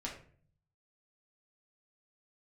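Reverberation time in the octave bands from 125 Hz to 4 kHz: 1.0, 0.75, 0.55, 0.40, 0.45, 0.30 s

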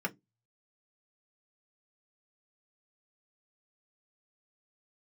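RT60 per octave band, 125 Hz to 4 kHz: 0.30, 0.25, 0.20, 0.10, 0.10, 0.15 s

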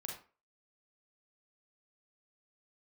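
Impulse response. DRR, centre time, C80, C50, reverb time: -0.5 dB, 33 ms, 10.0 dB, 4.0 dB, 0.35 s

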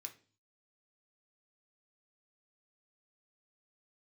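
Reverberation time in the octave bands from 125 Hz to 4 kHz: 0.70, 0.55, 0.45, 0.35, 0.40, 0.45 s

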